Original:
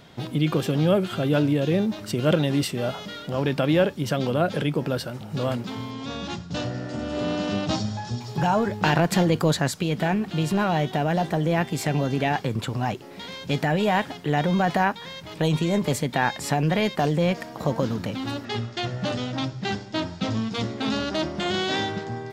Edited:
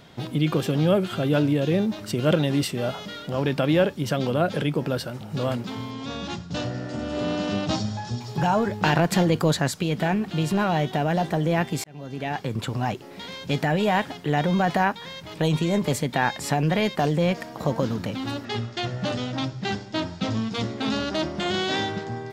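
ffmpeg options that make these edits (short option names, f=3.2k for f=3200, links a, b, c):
-filter_complex "[0:a]asplit=2[a][b];[a]atrim=end=11.84,asetpts=PTS-STARTPTS,afade=t=out:st=11.836:d=0.004:c=hsin[c];[b]atrim=start=11.84,asetpts=PTS-STARTPTS,afade=t=in:d=0.83[d];[c][d]concat=n=2:v=0:a=1"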